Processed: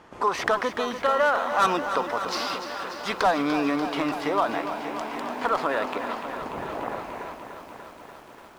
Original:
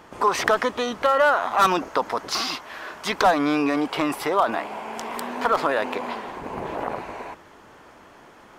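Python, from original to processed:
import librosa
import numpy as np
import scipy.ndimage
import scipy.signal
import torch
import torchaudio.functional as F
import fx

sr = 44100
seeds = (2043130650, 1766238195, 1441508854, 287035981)

y = scipy.ndimage.median_filter(x, 5, mode='constant')
y = scipy.signal.sosfilt(scipy.signal.butter(2, 11000.0, 'lowpass', fs=sr, output='sos'), y)
y = fx.echo_crushed(y, sr, ms=293, feedback_pct=80, bits=8, wet_db=-10)
y = F.gain(torch.from_numpy(y), -3.5).numpy()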